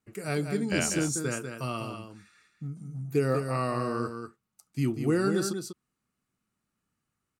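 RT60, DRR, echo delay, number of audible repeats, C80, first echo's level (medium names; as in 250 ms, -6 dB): no reverb, no reverb, 194 ms, 1, no reverb, -7.0 dB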